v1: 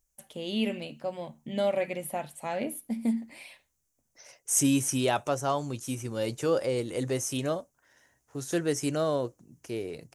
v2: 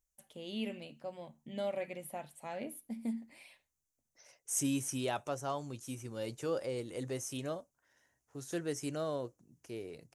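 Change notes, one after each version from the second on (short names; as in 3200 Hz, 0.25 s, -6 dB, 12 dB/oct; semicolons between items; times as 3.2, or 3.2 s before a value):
first voice -9.5 dB; second voice -9.0 dB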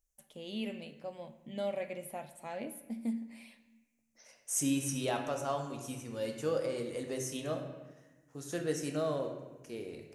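reverb: on, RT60 1.2 s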